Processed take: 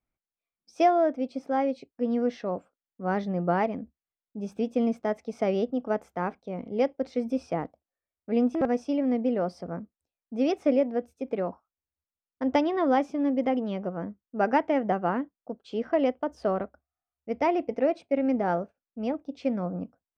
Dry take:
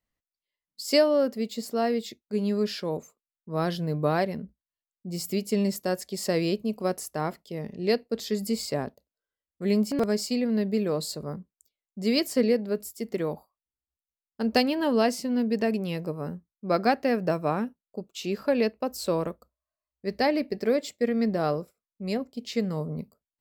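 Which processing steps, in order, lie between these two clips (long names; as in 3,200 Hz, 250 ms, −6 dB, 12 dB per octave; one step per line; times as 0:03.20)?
low-pass filter 1,700 Hz 12 dB per octave
speed change +16%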